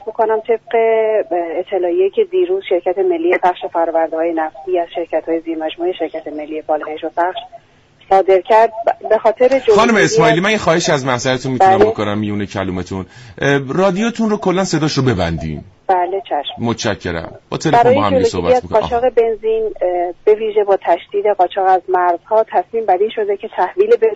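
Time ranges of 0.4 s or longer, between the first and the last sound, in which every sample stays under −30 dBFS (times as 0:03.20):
0:07.57–0:08.10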